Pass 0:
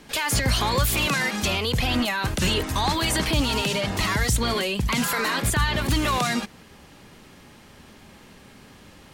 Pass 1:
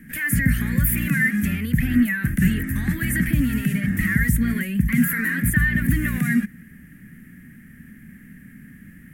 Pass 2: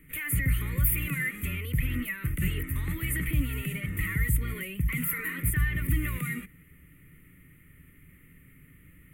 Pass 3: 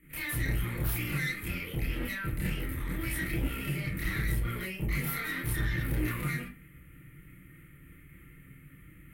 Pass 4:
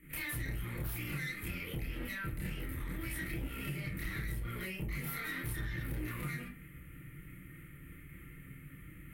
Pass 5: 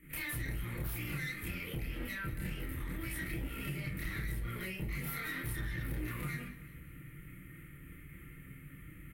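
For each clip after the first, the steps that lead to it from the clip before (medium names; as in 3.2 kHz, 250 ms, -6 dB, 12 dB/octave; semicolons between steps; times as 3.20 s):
FFT filter 110 Hz 0 dB, 160 Hz +8 dB, 250 Hz +6 dB, 380 Hz -14 dB, 970 Hz -29 dB, 1.8 kHz +7 dB, 2.6 kHz -12 dB, 4.1 kHz -27 dB, 6.7 kHz -16 dB, 12 kHz +4 dB; trim +2 dB
static phaser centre 1.1 kHz, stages 8; trim -2.5 dB
valve stage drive 31 dB, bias 0.75; reverse; upward compressor, threshold -50 dBFS; reverse; reverberation RT60 0.30 s, pre-delay 24 ms, DRR -6.5 dB; trim -3 dB
compression 3:1, threshold -40 dBFS, peak gain reduction 11 dB; trim +1.5 dB
feedback delay 188 ms, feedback 52%, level -17.5 dB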